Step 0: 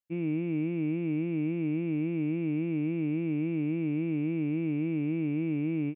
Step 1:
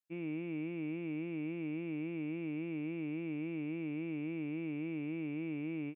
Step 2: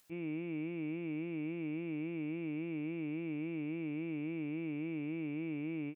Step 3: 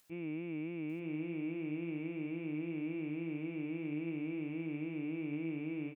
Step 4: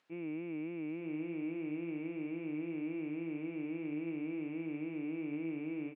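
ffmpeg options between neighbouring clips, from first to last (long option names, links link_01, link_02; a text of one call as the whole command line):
ffmpeg -i in.wav -af "lowshelf=frequency=310:gain=-11.5,volume=-3dB" out.wav
ffmpeg -i in.wav -af "acompressor=mode=upward:threshold=-51dB:ratio=2.5" out.wav
ffmpeg -i in.wav -af "aecho=1:1:897:0.473,volume=-1dB" out.wav
ffmpeg -i in.wav -af "highpass=200,lowpass=2600,volume=1dB" out.wav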